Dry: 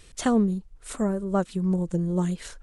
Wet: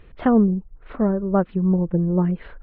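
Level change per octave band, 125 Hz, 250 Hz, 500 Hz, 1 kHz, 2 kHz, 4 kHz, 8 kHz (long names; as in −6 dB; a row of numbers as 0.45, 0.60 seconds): +5.5 dB, +5.5 dB, +5.0 dB, +4.5 dB, +1.5 dB, below −10 dB, below −40 dB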